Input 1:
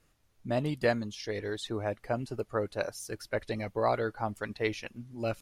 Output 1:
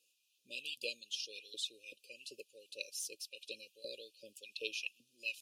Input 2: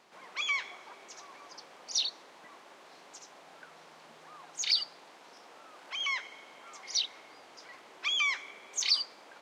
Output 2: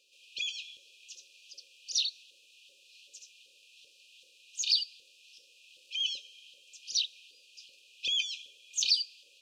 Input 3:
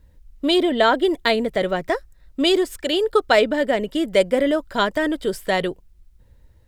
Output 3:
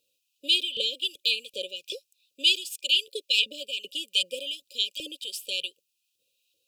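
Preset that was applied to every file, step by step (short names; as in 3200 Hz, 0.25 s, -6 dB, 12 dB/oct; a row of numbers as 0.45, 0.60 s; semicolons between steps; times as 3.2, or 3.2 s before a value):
LFO high-pass saw up 2.6 Hz 960–3200 Hz; brick-wall FIR band-stop 580–2400 Hz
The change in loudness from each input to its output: -10.0, 0.0, -6.0 LU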